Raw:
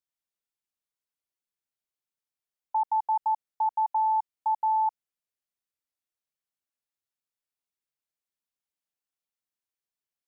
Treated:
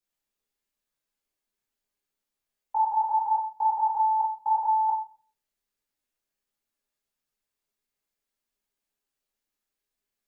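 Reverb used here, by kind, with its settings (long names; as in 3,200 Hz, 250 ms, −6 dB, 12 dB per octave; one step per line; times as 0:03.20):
rectangular room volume 37 cubic metres, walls mixed, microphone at 1.3 metres
level −1.5 dB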